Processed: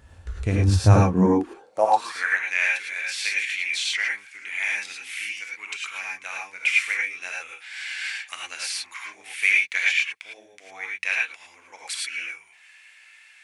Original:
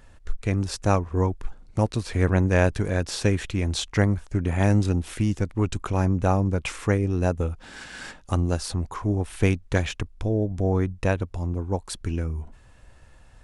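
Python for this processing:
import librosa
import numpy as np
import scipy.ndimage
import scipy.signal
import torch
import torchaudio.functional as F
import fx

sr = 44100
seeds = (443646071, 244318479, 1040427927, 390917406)

y = fx.rider(x, sr, range_db=5, speed_s=2.0)
y = fx.rev_gated(y, sr, seeds[0], gate_ms=130, shape='rising', drr_db=-2.5)
y = fx.filter_sweep_highpass(y, sr, from_hz=63.0, to_hz=2200.0, start_s=0.65, end_s=2.44, q=5.8)
y = F.gain(torch.from_numpy(y), -2.5).numpy()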